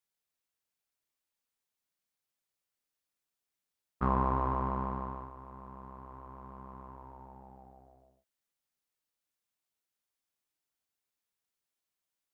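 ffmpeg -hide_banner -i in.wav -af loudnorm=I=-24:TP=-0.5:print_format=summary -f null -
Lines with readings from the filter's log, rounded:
Input Integrated:    -33.1 LUFS
Input True Peak:     -15.5 dBTP
Input LRA:            16.7 LU
Input Threshold:     -47.6 LUFS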